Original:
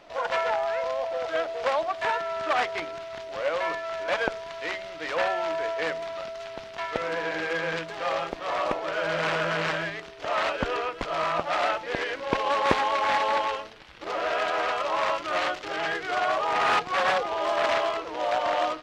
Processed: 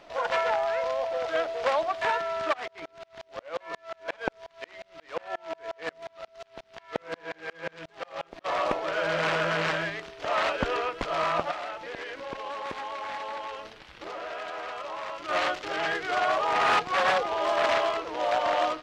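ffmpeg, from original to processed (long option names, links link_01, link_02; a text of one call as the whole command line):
ffmpeg -i in.wav -filter_complex "[0:a]asplit=3[link_01][link_02][link_03];[link_01]afade=type=out:start_time=2.52:duration=0.02[link_04];[link_02]aeval=exprs='val(0)*pow(10,-34*if(lt(mod(-5.6*n/s,1),2*abs(-5.6)/1000),1-mod(-5.6*n/s,1)/(2*abs(-5.6)/1000),(mod(-5.6*n/s,1)-2*abs(-5.6)/1000)/(1-2*abs(-5.6)/1000))/20)':channel_layout=same,afade=type=in:start_time=2.52:duration=0.02,afade=type=out:start_time=8.44:duration=0.02[link_05];[link_03]afade=type=in:start_time=8.44:duration=0.02[link_06];[link_04][link_05][link_06]amix=inputs=3:normalize=0,asettb=1/sr,asplit=3[link_07][link_08][link_09];[link_07]atrim=end=11.514[link_10];[link_08]atrim=start=11.51:end=15.29,asetpts=PTS-STARTPTS,afade=type=in:duration=0.004:curve=qsin,afade=type=out:start_time=3.776:duration=0.004:curve=qsin,acompressor=threshold=-36dB:ratio=3:attack=3.2:release=140:knee=1:detection=peak[link_11];[link_09]atrim=start=15.286[link_12];[link_10][link_11]acrossfade=duration=0.004:curve1=hsin:curve2=qsin[link_13];[link_13][link_12]acrossfade=duration=0.004:curve1=qsin:curve2=hsin" out.wav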